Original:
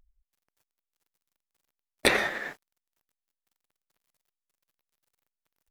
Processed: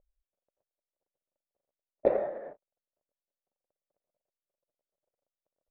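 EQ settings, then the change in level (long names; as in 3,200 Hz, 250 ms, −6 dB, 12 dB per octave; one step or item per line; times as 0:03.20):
low-pass with resonance 580 Hz, resonance Q 4.9
low-shelf EQ 380 Hz −5.5 dB
−5.0 dB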